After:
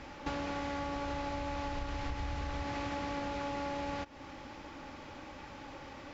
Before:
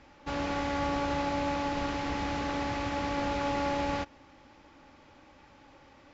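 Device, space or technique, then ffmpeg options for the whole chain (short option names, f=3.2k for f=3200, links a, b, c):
serial compression, leveller first: -filter_complex "[0:a]asettb=1/sr,asplit=3[a][b][c];[a]atrim=end=0.774[d];[b]atrim=start=0.77:end=2.64,asetpts=PTS-STARTPTS,afade=t=in:d=0.004:c=qsin,afade=t=out:st=1.866:d=0.004:c=qsin,asubboost=boost=10.5:cutoff=95[e];[c]atrim=start=2.636[f];[d][e]acrossfade=d=0.004:c1=hsin:c2=qsin[g];[g][f]acrossfade=d=0.004:c1=qsin:c2=hsin,acompressor=threshold=-33dB:ratio=2,acompressor=threshold=-44dB:ratio=5,volume=8.5dB"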